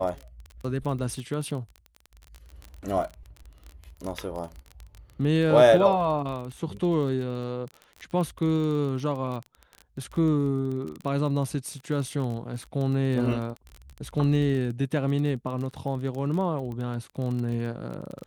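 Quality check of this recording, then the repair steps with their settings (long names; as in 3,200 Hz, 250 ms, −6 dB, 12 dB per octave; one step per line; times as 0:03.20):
surface crackle 26 per second −32 dBFS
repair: click removal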